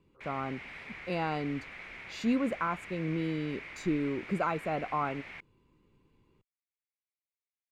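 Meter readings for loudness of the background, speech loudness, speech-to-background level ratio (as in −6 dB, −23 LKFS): −44.5 LKFS, −34.0 LKFS, 10.5 dB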